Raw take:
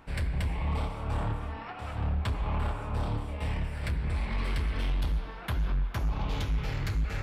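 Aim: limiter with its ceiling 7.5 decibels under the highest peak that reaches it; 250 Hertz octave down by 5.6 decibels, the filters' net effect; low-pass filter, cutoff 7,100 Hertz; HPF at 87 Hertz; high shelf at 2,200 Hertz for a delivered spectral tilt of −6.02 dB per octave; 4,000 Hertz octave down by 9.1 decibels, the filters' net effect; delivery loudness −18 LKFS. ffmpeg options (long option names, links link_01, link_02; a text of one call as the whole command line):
ffmpeg -i in.wav -af "highpass=87,lowpass=7100,equalizer=frequency=250:width_type=o:gain=-8.5,highshelf=frequency=2200:gain=-5.5,equalizer=frequency=4000:width_type=o:gain=-7,volume=22dB,alimiter=limit=-8dB:level=0:latency=1" out.wav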